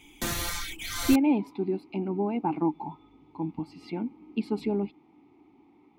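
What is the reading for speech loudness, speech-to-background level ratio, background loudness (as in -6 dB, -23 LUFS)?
-29.5 LUFS, 3.0 dB, -32.5 LUFS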